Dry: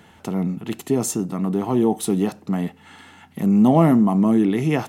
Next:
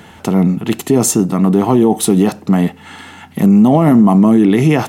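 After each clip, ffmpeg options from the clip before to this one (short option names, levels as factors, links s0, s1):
-af "alimiter=level_in=3.98:limit=0.891:release=50:level=0:latency=1,volume=0.891"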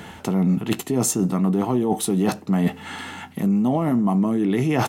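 -filter_complex "[0:a]areverse,acompressor=threshold=0.126:ratio=6,areverse,asplit=2[s0][s1];[s1]adelay=16,volume=0.224[s2];[s0][s2]amix=inputs=2:normalize=0"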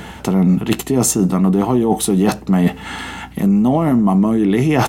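-af "aeval=exprs='val(0)+0.00562*(sin(2*PI*60*n/s)+sin(2*PI*2*60*n/s)/2+sin(2*PI*3*60*n/s)/3+sin(2*PI*4*60*n/s)/4+sin(2*PI*5*60*n/s)/5)':c=same,volume=2"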